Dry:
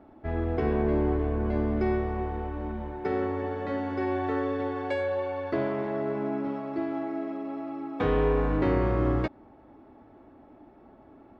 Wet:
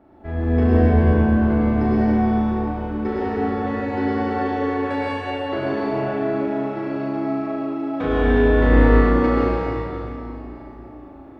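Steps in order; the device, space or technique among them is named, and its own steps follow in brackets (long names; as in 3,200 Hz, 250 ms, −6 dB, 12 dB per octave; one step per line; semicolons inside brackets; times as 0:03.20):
tunnel (flutter between parallel walls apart 6.3 metres, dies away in 0.76 s; convolution reverb RT60 3.3 s, pre-delay 91 ms, DRR −6.5 dB)
level −1 dB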